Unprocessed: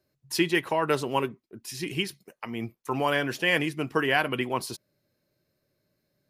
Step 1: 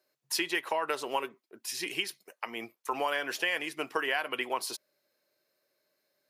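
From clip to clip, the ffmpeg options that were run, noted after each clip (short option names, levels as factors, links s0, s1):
-af "highpass=530,acompressor=threshold=0.0355:ratio=5,volume=1.26"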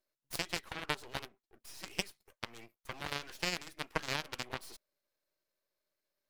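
-af "aeval=exprs='max(val(0),0)':c=same,aeval=exprs='0.188*(cos(1*acos(clip(val(0)/0.188,-1,1)))-cos(1*PI/2))+0.0473*(cos(3*acos(clip(val(0)/0.188,-1,1)))-cos(3*PI/2))+0.015*(cos(7*acos(clip(val(0)/0.188,-1,1)))-cos(7*PI/2))':c=same,volume=1.41"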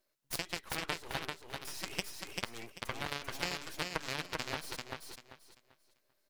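-filter_complex "[0:a]acompressor=threshold=0.01:ratio=4,asplit=2[s0][s1];[s1]aecho=0:1:391|782|1173|1564:0.668|0.167|0.0418|0.0104[s2];[s0][s2]amix=inputs=2:normalize=0,volume=2.11"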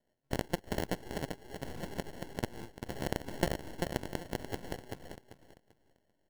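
-af "acrusher=samples=36:mix=1:aa=0.000001,volume=1.12"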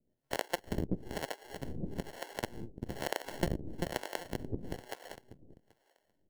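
-filter_complex "[0:a]acrossover=split=440[s0][s1];[s0]aeval=exprs='val(0)*(1-1/2+1/2*cos(2*PI*1.1*n/s))':c=same[s2];[s1]aeval=exprs='val(0)*(1-1/2-1/2*cos(2*PI*1.1*n/s))':c=same[s3];[s2][s3]amix=inputs=2:normalize=0,asplit=2[s4][s5];[s5]volume=31.6,asoftclip=hard,volume=0.0316,volume=0.299[s6];[s4][s6]amix=inputs=2:normalize=0,volume=1.41"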